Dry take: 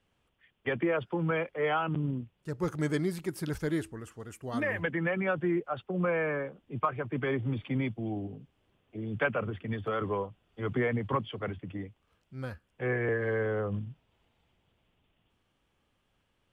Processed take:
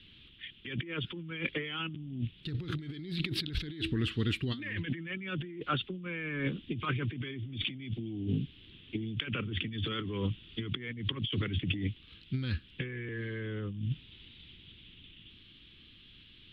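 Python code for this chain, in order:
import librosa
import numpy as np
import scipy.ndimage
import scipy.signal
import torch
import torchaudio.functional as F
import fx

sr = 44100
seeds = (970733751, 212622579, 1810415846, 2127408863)

y = fx.curve_eq(x, sr, hz=(330.0, 670.0, 3800.0, 6300.0), db=(0, -25, 14, -21))
y = fx.over_compress(y, sr, threshold_db=-44.0, ratio=-1.0)
y = F.gain(torch.from_numpy(y), 7.5).numpy()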